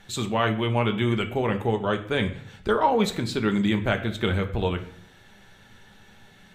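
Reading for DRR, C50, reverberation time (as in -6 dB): 5.0 dB, 12.5 dB, 0.60 s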